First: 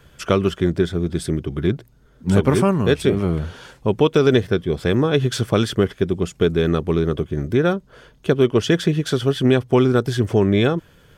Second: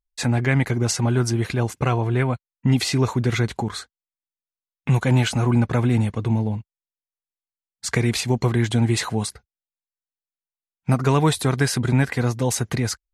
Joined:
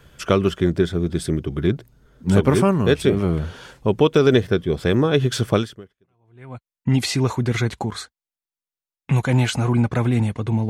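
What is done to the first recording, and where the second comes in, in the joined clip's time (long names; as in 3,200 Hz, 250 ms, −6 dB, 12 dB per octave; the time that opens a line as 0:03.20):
first
0:06.11: continue with second from 0:01.89, crossfade 1.10 s exponential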